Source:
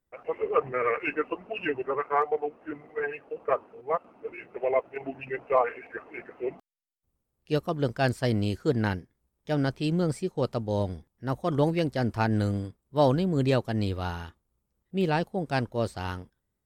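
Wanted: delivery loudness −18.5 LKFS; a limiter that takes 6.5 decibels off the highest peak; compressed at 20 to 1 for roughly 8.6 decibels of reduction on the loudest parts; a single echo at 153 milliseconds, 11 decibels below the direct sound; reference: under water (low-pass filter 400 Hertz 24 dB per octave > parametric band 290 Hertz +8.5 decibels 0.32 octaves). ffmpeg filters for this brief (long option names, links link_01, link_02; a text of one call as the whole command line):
ffmpeg -i in.wav -af "acompressor=threshold=-26dB:ratio=20,alimiter=limit=-23dB:level=0:latency=1,lowpass=frequency=400:width=0.5412,lowpass=frequency=400:width=1.3066,equalizer=frequency=290:width_type=o:width=0.32:gain=8.5,aecho=1:1:153:0.282,volume=16.5dB" out.wav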